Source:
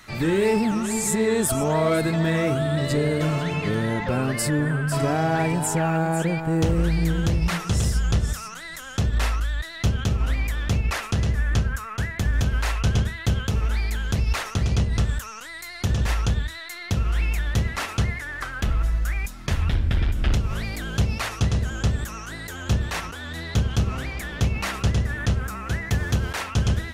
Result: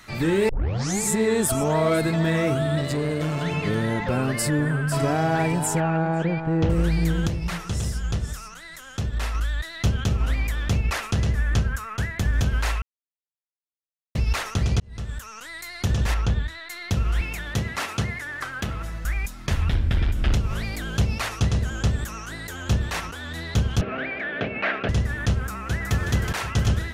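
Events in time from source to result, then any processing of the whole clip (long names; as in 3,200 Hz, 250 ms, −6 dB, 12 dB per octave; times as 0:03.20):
0:00.49: tape start 0.52 s
0:02.81–0:03.41: tube saturation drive 19 dB, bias 0.45
0:05.80–0:06.70: high-frequency loss of the air 190 metres
0:07.27–0:09.35: flanger 1.2 Hz, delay 6.5 ms, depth 8.3 ms, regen −89%
0:12.82–0:14.15: silence
0:14.80–0:15.52: fade in
0:16.14–0:16.70: low-pass filter 3,300 Hz 6 dB per octave
0:17.21–0:19.05: high-pass filter 99 Hz
0:23.81–0:24.89: loudspeaker in its box 230–3,200 Hz, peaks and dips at 260 Hz +5 dB, 420 Hz +5 dB, 630 Hz +10 dB, 970 Hz −5 dB, 1,600 Hz +9 dB, 2,300 Hz +5 dB
0:25.43–0:25.95: delay throw 370 ms, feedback 70%, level −5 dB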